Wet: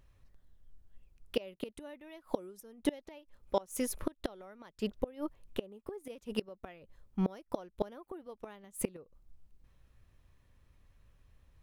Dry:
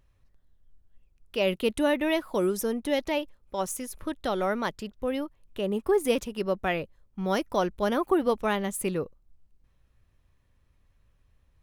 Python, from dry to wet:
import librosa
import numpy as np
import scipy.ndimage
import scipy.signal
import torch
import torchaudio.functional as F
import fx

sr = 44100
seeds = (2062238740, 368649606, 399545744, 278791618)

y = fx.gate_flip(x, sr, shuts_db=-21.0, range_db=-27)
y = fx.dynamic_eq(y, sr, hz=510.0, q=1.1, threshold_db=-51.0, ratio=4.0, max_db=4)
y = y * librosa.db_to_amplitude(1.5)